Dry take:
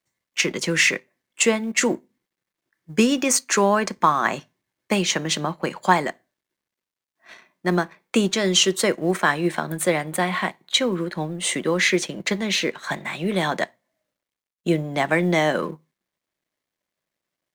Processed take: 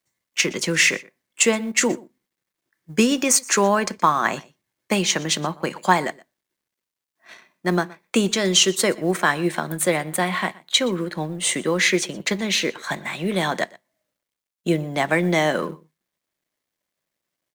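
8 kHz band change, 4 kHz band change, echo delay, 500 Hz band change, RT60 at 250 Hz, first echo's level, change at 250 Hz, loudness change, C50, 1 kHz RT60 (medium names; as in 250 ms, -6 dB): +3.0 dB, +1.5 dB, 121 ms, 0.0 dB, no reverb, -22.5 dB, 0.0 dB, +1.0 dB, no reverb, no reverb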